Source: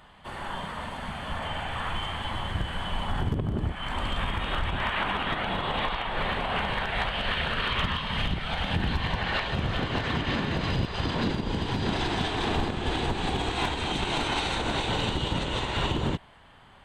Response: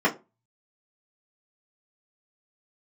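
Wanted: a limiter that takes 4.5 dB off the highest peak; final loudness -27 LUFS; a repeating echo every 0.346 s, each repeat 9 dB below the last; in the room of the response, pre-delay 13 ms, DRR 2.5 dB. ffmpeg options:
-filter_complex "[0:a]alimiter=limit=-23dB:level=0:latency=1,aecho=1:1:346|692|1038|1384:0.355|0.124|0.0435|0.0152,asplit=2[a][b];[1:a]atrim=start_sample=2205,adelay=13[c];[b][c]afir=irnorm=-1:irlink=0,volume=-18.5dB[d];[a][d]amix=inputs=2:normalize=0,volume=3dB"

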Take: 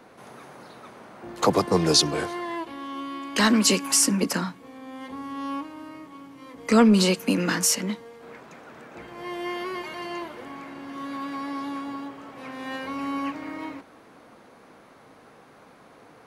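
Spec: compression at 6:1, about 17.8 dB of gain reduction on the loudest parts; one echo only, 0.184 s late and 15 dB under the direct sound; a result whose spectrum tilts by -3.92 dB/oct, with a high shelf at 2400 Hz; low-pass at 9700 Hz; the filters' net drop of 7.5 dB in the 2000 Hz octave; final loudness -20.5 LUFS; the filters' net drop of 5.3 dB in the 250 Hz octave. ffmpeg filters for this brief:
-af "lowpass=9.7k,equalizer=f=250:t=o:g=-6.5,equalizer=f=2k:t=o:g=-7,highshelf=f=2.4k:g=-5.5,acompressor=threshold=-37dB:ratio=6,aecho=1:1:184:0.178,volume=21dB"

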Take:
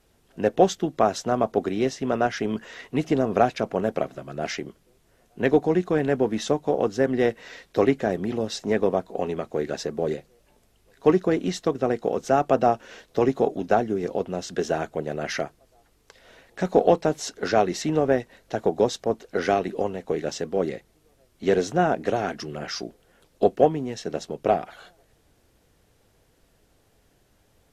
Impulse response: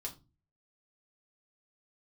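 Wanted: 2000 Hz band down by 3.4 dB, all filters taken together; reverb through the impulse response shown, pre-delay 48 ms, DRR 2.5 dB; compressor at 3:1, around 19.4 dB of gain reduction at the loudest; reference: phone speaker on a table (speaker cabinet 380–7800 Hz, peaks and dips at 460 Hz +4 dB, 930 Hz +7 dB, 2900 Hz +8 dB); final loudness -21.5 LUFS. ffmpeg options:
-filter_complex "[0:a]equalizer=f=2k:t=o:g=-6.5,acompressor=threshold=-40dB:ratio=3,asplit=2[a][b];[1:a]atrim=start_sample=2205,adelay=48[c];[b][c]afir=irnorm=-1:irlink=0,volume=-0.5dB[d];[a][d]amix=inputs=2:normalize=0,highpass=f=380:w=0.5412,highpass=f=380:w=1.3066,equalizer=f=460:t=q:w=4:g=4,equalizer=f=930:t=q:w=4:g=7,equalizer=f=2.9k:t=q:w=4:g=8,lowpass=f=7.8k:w=0.5412,lowpass=f=7.8k:w=1.3066,volume=16dB"

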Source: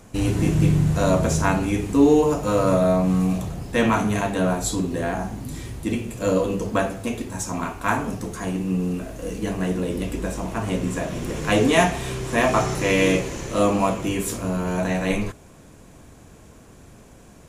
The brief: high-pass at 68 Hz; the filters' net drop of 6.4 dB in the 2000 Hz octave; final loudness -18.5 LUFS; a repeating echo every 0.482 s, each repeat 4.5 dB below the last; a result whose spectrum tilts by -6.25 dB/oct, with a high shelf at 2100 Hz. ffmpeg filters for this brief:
-af "highpass=68,equalizer=f=2k:t=o:g=-5,highshelf=f=2.1k:g=-5.5,aecho=1:1:482|964|1446|1928|2410|2892|3374|3856|4338:0.596|0.357|0.214|0.129|0.0772|0.0463|0.0278|0.0167|0.01,volume=3dB"

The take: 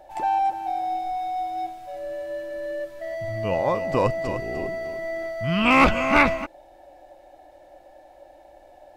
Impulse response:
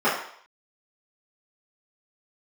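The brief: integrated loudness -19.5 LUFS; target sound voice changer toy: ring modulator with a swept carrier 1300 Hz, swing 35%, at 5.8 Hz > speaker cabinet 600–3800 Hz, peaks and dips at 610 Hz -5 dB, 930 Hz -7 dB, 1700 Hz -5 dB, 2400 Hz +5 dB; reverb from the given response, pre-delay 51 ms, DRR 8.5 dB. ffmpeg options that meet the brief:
-filter_complex "[0:a]asplit=2[a][b];[1:a]atrim=start_sample=2205,adelay=51[c];[b][c]afir=irnorm=-1:irlink=0,volume=-27.5dB[d];[a][d]amix=inputs=2:normalize=0,aeval=exprs='val(0)*sin(2*PI*1300*n/s+1300*0.35/5.8*sin(2*PI*5.8*n/s))':c=same,highpass=600,equalizer=f=610:t=q:w=4:g=-5,equalizer=f=930:t=q:w=4:g=-7,equalizer=f=1.7k:t=q:w=4:g=-5,equalizer=f=2.4k:t=q:w=4:g=5,lowpass=f=3.8k:w=0.5412,lowpass=f=3.8k:w=1.3066,volume=7.5dB"

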